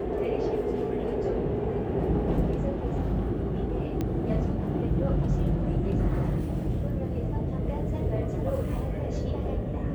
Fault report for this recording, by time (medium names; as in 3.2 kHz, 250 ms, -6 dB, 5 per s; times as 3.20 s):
4.01 s: pop -18 dBFS